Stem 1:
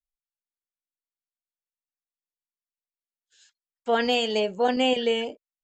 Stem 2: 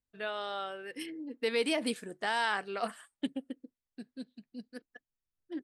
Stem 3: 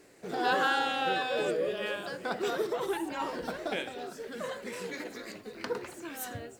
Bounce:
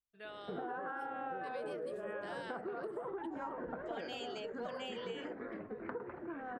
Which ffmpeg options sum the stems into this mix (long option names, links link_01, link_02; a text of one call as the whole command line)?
ffmpeg -i stem1.wav -i stem2.wav -i stem3.wav -filter_complex "[0:a]lowshelf=frequency=360:gain=-11,aeval=exprs='clip(val(0),-1,0.1)':channel_layout=same,volume=-13dB[link_01];[1:a]volume=-12dB[link_02];[2:a]lowpass=frequency=1600:width=0.5412,lowpass=frequency=1600:width=1.3066,adelay=250,volume=2dB[link_03];[link_02][link_03]amix=inputs=2:normalize=0,acompressor=threshold=-29dB:ratio=6,volume=0dB[link_04];[link_01][link_04]amix=inputs=2:normalize=0,acompressor=threshold=-40dB:ratio=4" out.wav